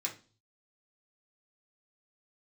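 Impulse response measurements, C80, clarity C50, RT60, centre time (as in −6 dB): 18.5 dB, 12.0 dB, 0.35 s, 15 ms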